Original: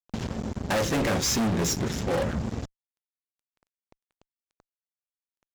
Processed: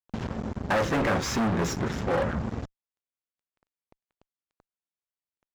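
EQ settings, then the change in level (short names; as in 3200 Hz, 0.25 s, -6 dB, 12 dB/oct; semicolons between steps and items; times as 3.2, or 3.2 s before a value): dynamic EQ 1300 Hz, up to +6 dB, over -43 dBFS, Q 0.8; high shelf 4200 Hz -11 dB; -1.0 dB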